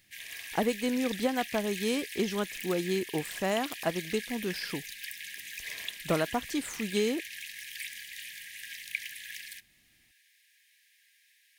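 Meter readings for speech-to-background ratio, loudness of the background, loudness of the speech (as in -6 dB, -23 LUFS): 7.5 dB, -39.5 LUFS, -32.0 LUFS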